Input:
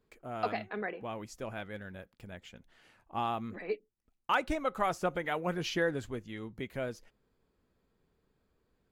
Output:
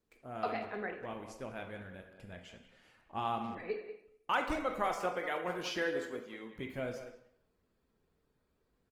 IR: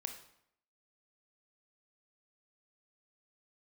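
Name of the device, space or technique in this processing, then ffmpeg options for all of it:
speakerphone in a meeting room: -filter_complex "[0:a]asettb=1/sr,asplit=3[a][b][c];[a]atrim=end=4.884[d];[b]atrim=start=4.88:end=6.56,asetpts=PTS-STARTPTS,afade=t=in:d=0.004:c=qsin,afade=t=out:st=1.676:d=0.004:c=qsin,highpass=280[e];[c]atrim=start=6.556[f];[d][e]acrossfade=d=0.004:c1=hsin:c2=qsin[g];[g][f]acrossfade=d=0.004:c1=qsin:c2=hsin[h];[1:a]atrim=start_sample=2205[i];[h][i]afir=irnorm=-1:irlink=0,asplit=2[j][k];[k]adelay=190,highpass=300,lowpass=3.4k,asoftclip=type=hard:threshold=-27.5dB,volume=-11dB[l];[j][l]amix=inputs=2:normalize=0,dynaudnorm=f=110:g=5:m=3.5dB,volume=-4dB" -ar 48000 -c:a libopus -b:a 24k

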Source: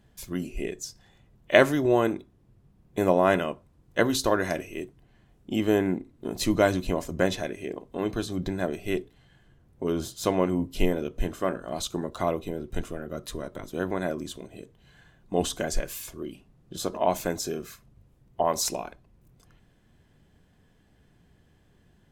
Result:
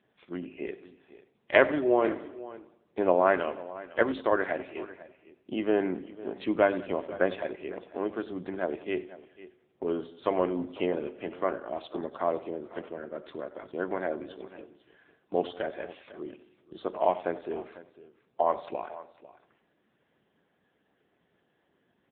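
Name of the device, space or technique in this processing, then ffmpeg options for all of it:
satellite phone: -filter_complex "[0:a]asplit=3[a][b][c];[a]afade=t=out:st=10.11:d=0.02[d];[b]bandreject=f=50:t=h:w=6,bandreject=f=100:t=h:w=6,bandreject=f=150:t=h:w=6,bandreject=f=200:t=h:w=6,bandreject=f=250:t=h:w=6,bandreject=f=300:t=h:w=6,bandreject=f=350:t=h:w=6,bandreject=f=400:t=h:w=6,bandreject=f=450:t=h:w=6,afade=t=in:st=10.11:d=0.02,afade=t=out:st=10.78:d=0.02[e];[c]afade=t=in:st=10.78:d=0.02[f];[d][e][f]amix=inputs=3:normalize=0,highpass=320,lowpass=3.1k,aecho=1:1:91|182|273|364|455:0.158|0.084|0.0445|0.0236|0.0125,aecho=1:1:499:0.133" -ar 8000 -c:a libopencore_amrnb -b:a 6700

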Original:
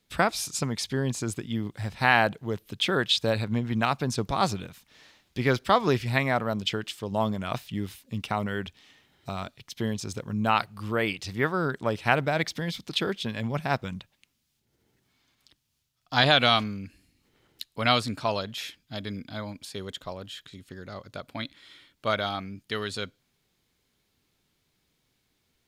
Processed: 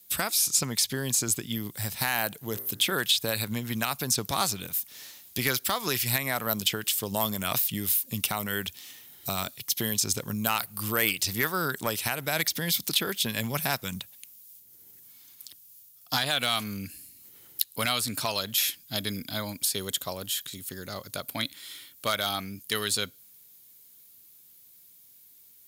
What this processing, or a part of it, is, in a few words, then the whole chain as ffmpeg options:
FM broadcast chain: -filter_complex "[0:a]asettb=1/sr,asplit=3[a][b][c];[a]atrim=end=2.394[d];[b]atrim=start=2.39:end=2.93,asetpts=PTS-STARTPTS,afade=t=in:d=0.004:c=qsin,afade=t=out:st=0.536:d=0.004:c=qsin,bandreject=f=58.87:t=h:w=4,bandreject=f=117.74:t=h:w=4,bandreject=f=176.61:t=h:w=4,bandreject=f=235.48:t=h:w=4,bandreject=f=294.35:t=h:w=4,bandreject=f=353.22:t=h:w=4,bandreject=f=412.09:t=h:w=4,bandreject=f=470.96:t=h:w=4,bandreject=f=529.83:t=h:w=4,bandreject=f=588.7:t=h:w=4,bandreject=f=647.57:t=h:w=4,bandreject=f=706.44:t=h:w=4,bandreject=f=765.31:t=h:w=4,bandreject=f=824.18:t=h:w=4,bandreject=f=883.05:t=h:w=4,bandreject=f=941.92:t=h:w=4,bandreject=f=1.00079k:t=h:w=4,bandreject=f=1.05966k:t=h:w=4,bandreject=f=1.11853k:t=h:w=4,bandreject=f=1.1774k:t=h:w=4,bandreject=f=1.23627k:t=h:w=4,bandreject=f=1.29514k:t=h:w=4,bandreject=f=1.35401k:t=h:w=4,bandreject=f=1.41288k:t=h:w=4,bandreject=f=1.47175k:t=h:w=4,bandreject=f=1.53062k:t=h:w=4,bandreject=f=1.58949k:t=h:w=4,bandreject=f=1.64836k:t=h:w=4,bandreject=f=1.70723k:t=h:w=4,bandreject=f=1.7661k:t=h:w=4,bandreject=f=1.82497k:t=h:w=4,bandreject=f=1.88384k:t=h:w=4,bandreject=f=1.94271k:t=h:w=4,bandreject=f=2.00158k:t=h:w=4,bandreject=f=2.06045k:t=h:w=4,bandreject=f=2.11932k:t=h:w=4[e];[c]atrim=start=2.926[f];[d][e]acrossfade=d=0.004:c1=hsin:c2=qsin[g];[g][f]acrossfade=d=0.004:c1=qsin:c2=hsin,highpass=74,dynaudnorm=f=910:g=11:m=6.5dB,acrossover=split=1100|3200|6400[h][i][j][k];[h]acompressor=threshold=-28dB:ratio=4[l];[i]acompressor=threshold=-26dB:ratio=4[m];[j]acompressor=threshold=-39dB:ratio=4[n];[k]acompressor=threshold=-49dB:ratio=4[o];[l][m][n][o]amix=inputs=4:normalize=0,aemphasis=mode=production:type=50fm,alimiter=limit=-14dB:level=0:latency=1:release=353,asoftclip=type=hard:threshold=-17.5dB,lowpass=f=15k:w=0.5412,lowpass=f=15k:w=1.3066,aemphasis=mode=production:type=50fm"

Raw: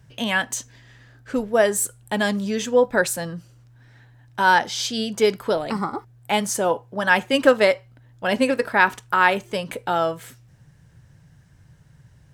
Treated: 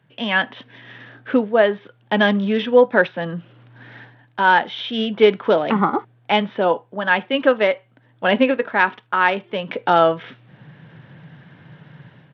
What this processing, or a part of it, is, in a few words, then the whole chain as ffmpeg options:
Bluetooth headset: -af "highpass=f=160:w=0.5412,highpass=f=160:w=1.3066,dynaudnorm=f=140:g=5:m=16dB,aresample=8000,aresample=44100,volume=-1dB" -ar 32000 -c:a sbc -b:a 64k

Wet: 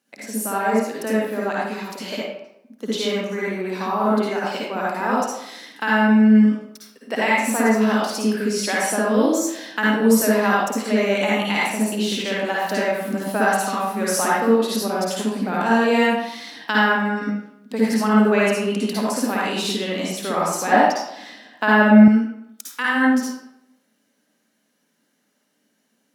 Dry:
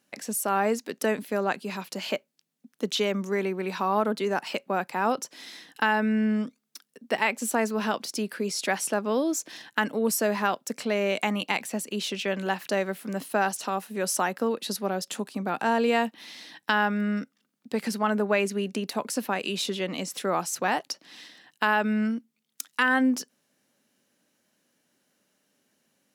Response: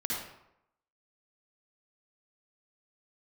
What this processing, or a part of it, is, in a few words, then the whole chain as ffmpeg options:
far laptop microphone: -filter_complex "[1:a]atrim=start_sample=2205[a];[0:a][a]afir=irnorm=-1:irlink=0,highpass=150,dynaudnorm=f=940:g=13:m=6dB,asettb=1/sr,asplit=3[b][c][d];[b]atrim=end=20.724[e];[c]atrim=start=20.72:end=22.08,asetpts=PTS-STARTPTS,afade=t=in:d=0.004:c=qsin,afade=t=out:st=1.356:d=0.004:c=qsin,equalizer=f=250:t=o:w=0.67:g=7,equalizer=f=630:t=o:w=0.67:g=10,equalizer=f=1.6k:t=o:w=0.67:g=3,equalizer=f=10k:t=o:w=0.67:g=-4[f];[d]atrim=start=22.076[g];[e][f]acrossfade=d=0.004:c1=hsin:c2=qsin[h];[h][g]acrossfade=d=0.004:c1=qsin:c2=hsin,volume=-1.5dB"

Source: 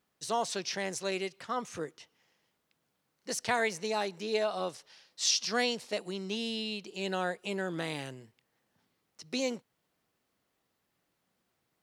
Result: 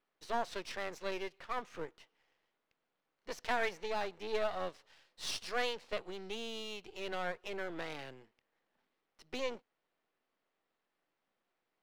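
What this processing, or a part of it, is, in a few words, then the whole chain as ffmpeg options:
crystal radio: -af "highpass=310,lowpass=3.1k,aeval=exprs='if(lt(val(0),0),0.251*val(0),val(0))':c=same"

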